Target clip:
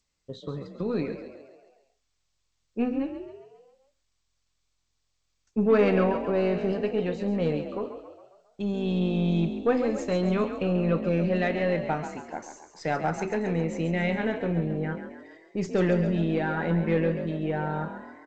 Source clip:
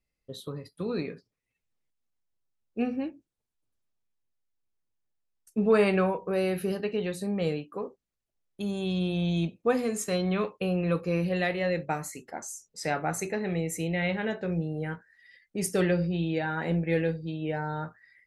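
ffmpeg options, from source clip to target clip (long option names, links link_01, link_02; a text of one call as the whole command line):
ffmpeg -i in.wav -filter_complex "[0:a]aeval=exprs='0.251*(cos(1*acos(clip(val(0)/0.251,-1,1)))-cos(1*PI/2))+0.0112*(cos(5*acos(clip(val(0)/0.251,-1,1)))-cos(5*PI/2))+0.00631*(cos(8*acos(clip(val(0)/0.251,-1,1)))-cos(8*PI/2))':channel_layout=same,aemphasis=mode=reproduction:type=75fm,asplit=2[link_01][link_02];[link_02]asplit=6[link_03][link_04][link_05][link_06][link_07][link_08];[link_03]adelay=136,afreqshift=43,volume=-9.5dB[link_09];[link_04]adelay=272,afreqshift=86,volume=-15.3dB[link_10];[link_05]adelay=408,afreqshift=129,volume=-21.2dB[link_11];[link_06]adelay=544,afreqshift=172,volume=-27dB[link_12];[link_07]adelay=680,afreqshift=215,volume=-32.9dB[link_13];[link_08]adelay=816,afreqshift=258,volume=-38.7dB[link_14];[link_09][link_10][link_11][link_12][link_13][link_14]amix=inputs=6:normalize=0[link_15];[link_01][link_15]amix=inputs=2:normalize=0" -ar 16000 -c:a g722 out.g722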